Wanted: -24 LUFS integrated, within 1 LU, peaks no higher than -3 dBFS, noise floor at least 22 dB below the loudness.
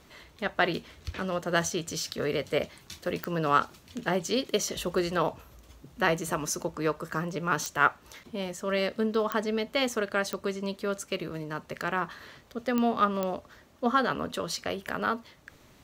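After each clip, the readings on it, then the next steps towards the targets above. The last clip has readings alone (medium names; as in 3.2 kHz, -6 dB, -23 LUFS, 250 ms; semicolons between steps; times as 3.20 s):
clicks found 6; loudness -30.0 LUFS; peak level -7.5 dBFS; loudness target -24.0 LUFS
-> de-click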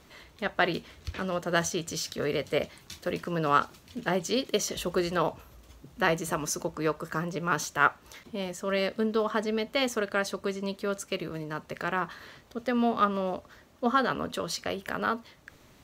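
clicks found 0; loudness -30.0 LUFS; peak level -7.5 dBFS; loudness target -24.0 LUFS
-> trim +6 dB; peak limiter -3 dBFS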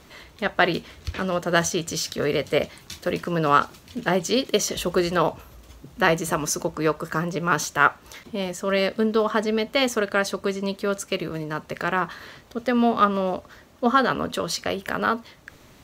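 loudness -24.0 LUFS; peak level -3.0 dBFS; noise floor -51 dBFS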